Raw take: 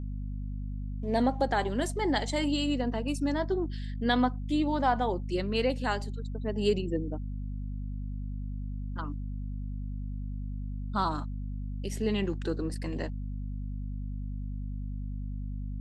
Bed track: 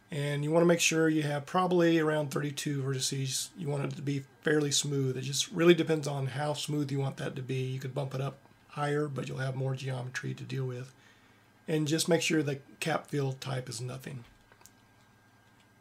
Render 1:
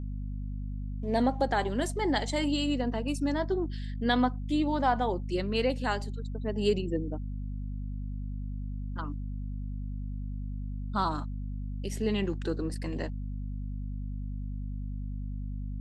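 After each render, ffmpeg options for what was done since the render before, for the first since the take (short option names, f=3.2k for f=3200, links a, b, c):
-af anull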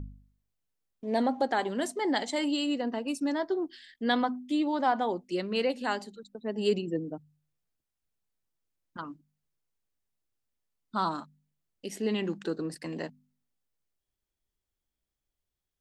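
-af "bandreject=f=50:t=h:w=4,bandreject=f=100:t=h:w=4,bandreject=f=150:t=h:w=4,bandreject=f=200:t=h:w=4,bandreject=f=250:t=h:w=4"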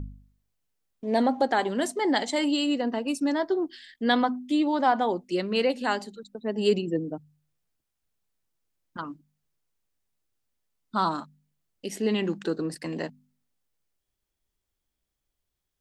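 -af "volume=4dB"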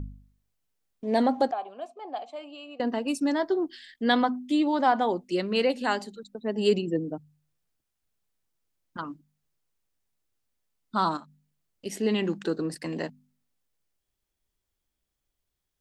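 -filter_complex "[0:a]asettb=1/sr,asplit=3[a][b][c];[a]atrim=end=1.514[d];[b]atrim=start=1.51:end=2.8,asetpts=PTS-STARTPTS,afade=t=in:d=0.004:c=qsin,afade=t=out:st=1.286:d=0.004:c=qsin,asplit=3[e][f][g];[e]bandpass=f=730:t=q:w=8,volume=0dB[h];[f]bandpass=f=1.09k:t=q:w=8,volume=-6dB[i];[g]bandpass=f=2.44k:t=q:w=8,volume=-9dB[j];[h][i][j]amix=inputs=3:normalize=0[k];[c]atrim=start=2.796[l];[d][k]acrossfade=d=0.004:c1=hsin:c2=qsin[m];[m][l]acrossfade=d=0.004:c1=qsin:c2=hsin,asettb=1/sr,asplit=3[n][o][p];[n]atrim=end=11.174[q];[o]atrim=start=11.17:end=11.86,asetpts=PTS-STARTPTS,afade=t=in:d=0.004:c=qsin,afade=t=out:st=0.686:d=0.004:c=qsin,acompressor=threshold=-47dB:ratio=2:attack=3.2:release=140:knee=1:detection=peak[r];[p]atrim=start=11.856[s];[q][r]acrossfade=d=0.004:c1=hsin:c2=qsin[t];[t][s]acrossfade=d=0.004:c1=qsin:c2=hsin"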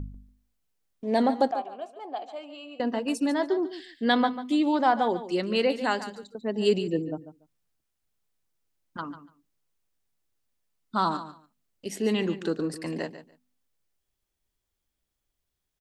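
-af "aecho=1:1:144|288:0.224|0.0381"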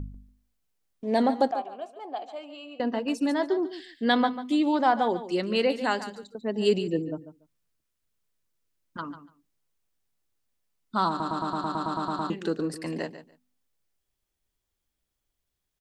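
-filter_complex "[0:a]asettb=1/sr,asplit=3[a][b][c];[a]atrim=end=2.734[d];[b]atrim=start=2.73:end=3.18,asetpts=PTS-STARTPTS,afade=t=in:d=0.004:c=qsin,afade=t=out:st=0.446:d=0.004:c=qsin,equalizer=f=9.8k:w=1.5:g=-11.5[e];[c]atrim=start=3.176[f];[d][e]acrossfade=d=0.004:c1=hsin:c2=qsin[g];[g][f]acrossfade=d=0.004:c1=qsin:c2=hsin,asettb=1/sr,asplit=3[h][i][j];[h]atrim=end=7.074[k];[i]atrim=start=7.07:end=9.09,asetpts=PTS-STARTPTS,afade=t=in:d=0.004:c=qsin,afade=t=out:st=2.016:d=0.004:c=qsin,bandreject=f=780:w=6.4[l];[j]atrim=start=9.086[m];[k][l]acrossfade=d=0.004:c1=hsin:c2=qsin[n];[n][m]acrossfade=d=0.004:c1=qsin:c2=hsin,asplit=12[o][p][q][r][s][t][u][v][w][x][y][z];[o]atrim=end=11.202[aa];[p]atrim=start=11.088:end=11.202[ab];[q]atrim=start=11.088:end=11.202[ac];[r]atrim=start=11.088:end=11.202[ad];[s]atrim=start=11.088:end=11.202[ae];[t]atrim=start=11.088:end=11.202[af];[u]atrim=start=11.088:end=11.202[ag];[v]atrim=start=11.088:end=11.202[ah];[w]atrim=start=11.088:end=11.202[ai];[x]atrim=start=11.088:end=11.202[aj];[y]atrim=start=11.088:end=11.202[ak];[z]atrim=start=12.298[al];[aa][ab]acrossfade=d=0.004:c1=hsin:c2=hsin[am];[am][ac]acrossfade=d=0.004:c1=hsin:c2=hsin[an];[an][ad]acrossfade=d=0.004:c1=hsin:c2=hsin[ao];[ao][ae]acrossfade=d=0.004:c1=hsin:c2=hsin[ap];[ap][af]acrossfade=d=0.004:c1=hsin:c2=hsin[aq];[aq][ag]acrossfade=d=0.004:c1=hsin:c2=hsin[ar];[ar][ah]acrossfade=d=0.004:c1=hsin:c2=hsin[as];[as][ai]acrossfade=d=0.004:c1=hsin:c2=hsin[at];[at][aj]acrossfade=d=0.004:c1=hsin:c2=hsin[au];[au][ak]acrossfade=d=0.004:c1=hsin:c2=hsin[av];[av][al]acrossfade=d=0.004:c1=hsin:c2=hsin"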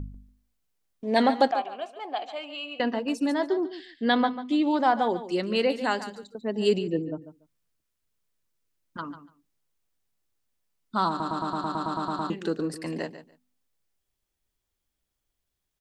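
-filter_complex "[0:a]asettb=1/sr,asplit=3[a][b][c];[a]atrim=end=1.164[d];[b]atrim=start=1.16:end=2.94,asetpts=PTS-STARTPTS,afade=t=in:d=0.004:c=qsin,afade=t=out:st=1.776:d=0.004:c=qsin,equalizer=f=2.5k:t=o:w=2.3:g=10.5[e];[c]atrim=start=2.936[f];[d][e]acrossfade=d=0.004:c1=hsin:c2=qsin[g];[g][f]acrossfade=d=0.004:c1=qsin:c2=hsin,asettb=1/sr,asplit=3[h][i][j];[h]atrim=end=3.664[k];[i]atrim=start=3.66:end=4.71,asetpts=PTS-STARTPTS,afade=t=in:d=0.004:c=qsin,afade=t=out:st=1.046:d=0.004:c=qsin,lowpass=5.4k[l];[j]atrim=start=4.706[m];[k][l]acrossfade=d=0.004:c1=hsin:c2=qsin[n];[n][m]acrossfade=d=0.004:c1=qsin:c2=hsin,asettb=1/sr,asplit=3[o][p][q];[o]atrim=end=6.794[r];[p]atrim=start=6.79:end=7.22,asetpts=PTS-STARTPTS,afade=t=in:d=0.004:c=qsin,afade=t=out:st=0.426:d=0.004:c=qsin,highshelf=f=5.6k:g=-10.5[s];[q]atrim=start=7.216[t];[r][s]acrossfade=d=0.004:c1=hsin:c2=qsin[u];[u][t]acrossfade=d=0.004:c1=qsin:c2=hsin"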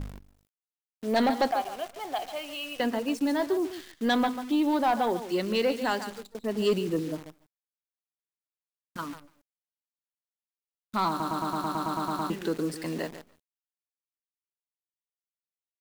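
-af "acrusher=bits=8:dc=4:mix=0:aa=0.000001,asoftclip=type=tanh:threshold=-17dB"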